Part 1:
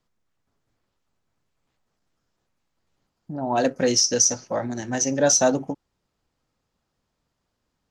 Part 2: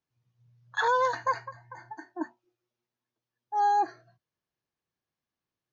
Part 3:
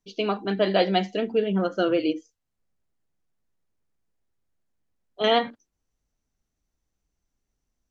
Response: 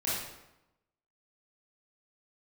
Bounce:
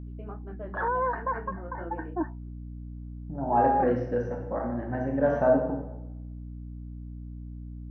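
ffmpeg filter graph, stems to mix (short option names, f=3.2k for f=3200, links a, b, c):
-filter_complex "[0:a]volume=-9dB,asplit=2[a][b];[b]volume=-4.5dB[c];[1:a]acontrast=82,alimiter=limit=-17dB:level=0:latency=1:release=50,volume=0.5dB,asplit=3[d][e][f];[d]atrim=end=2.51,asetpts=PTS-STARTPTS,afade=t=out:st=2.506:d=0.004:c=hsin[g];[e]atrim=start=2.51:end=3.4,asetpts=PTS-STARTPTS,volume=0[h];[f]atrim=start=3.4,asetpts=PTS-STARTPTS,afade=t=in:d=0.004:c=hsin[i];[g][h][i]concat=n=3:v=0:a=1[j];[2:a]flanger=delay=17.5:depth=7.3:speed=2.1,volume=-14.5dB[k];[j][k]amix=inputs=2:normalize=0,alimiter=limit=-20dB:level=0:latency=1:release=203,volume=0dB[l];[3:a]atrim=start_sample=2205[m];[c][m]afir=irnorm=-1:irlink=0[n];[a][l][n]amix=inputs=3:normalize=0,lowpass=f=1.6k:w=0.5412,lowpass=f=1.6k:w=1.3066,aeval=exprs='val(0)+0.0126*(sin(2*PI*60*n/s)+sin(2*PI*2*60*n/s)/2+sin(2*PI*3*60*n/s)/3+sin(2*PI*4*60*n/s)/4+sin(2*PI*5*60*n/s)/5)':c=same"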